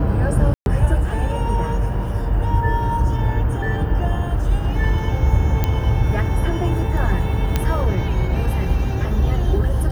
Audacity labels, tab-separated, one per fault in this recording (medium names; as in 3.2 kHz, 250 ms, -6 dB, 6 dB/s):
0.540000	0.660000	dropout 121 ms
5.640000	5.640000	pop -6 dBFS
7.560000	7.560000	pop -5 dBFS